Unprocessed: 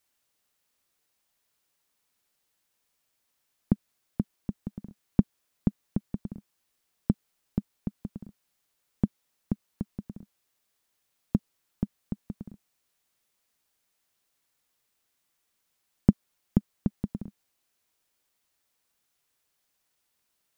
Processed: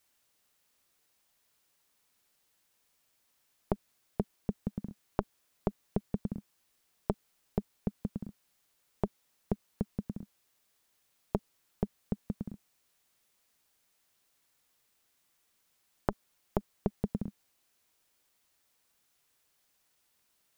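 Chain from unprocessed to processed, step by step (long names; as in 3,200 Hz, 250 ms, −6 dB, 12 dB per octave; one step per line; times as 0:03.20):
saturating transformer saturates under 770 Hz
level +3 dB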